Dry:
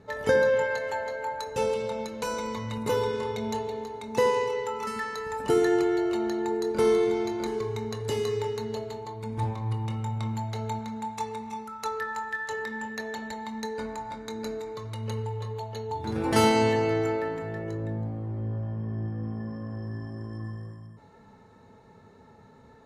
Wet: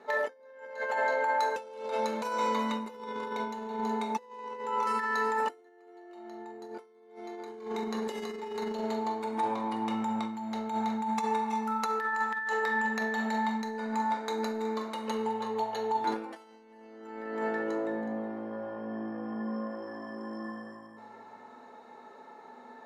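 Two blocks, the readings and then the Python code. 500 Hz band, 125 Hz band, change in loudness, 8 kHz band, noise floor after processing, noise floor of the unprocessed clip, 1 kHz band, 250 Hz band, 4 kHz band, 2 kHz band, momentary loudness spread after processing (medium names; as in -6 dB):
-7.5 dB, -18.0 dB, -3.0 dB, -8.0 dB, -54 dBFS, -54 dBFS, +1.5 dB, -3.0 dB, -6.0 dB, 0.0 dB, 20 LU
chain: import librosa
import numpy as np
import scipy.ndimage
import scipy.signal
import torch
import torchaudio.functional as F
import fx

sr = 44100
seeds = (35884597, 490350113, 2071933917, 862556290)

y = scipy.signal.sosfilt(scipy.signal.butter(4, 270.0, 'highpass', fs=sr, output='sos'), x)
y = y + 10.0 ** (-16.5 / 20.0) * np.pad(y, (int(370 * sr / 1000.0), 0))[:len(y)]
y = fx.rev_fdn(y, sr, rt60_s=1.5, lf_ratio=1.35, hf_ratio=0.45, size_ms=25.0, drr_db=2.5)
y = fx.over_compress(y, sr, threshold_db=-31.0, ratio=-0.5)
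y = fx.curve_eq(y, sr, hz=(390.0, 810.0, 7700.0), db=(0, 8, -1))
y = y * librosa.db_to_amplitude(-5.5)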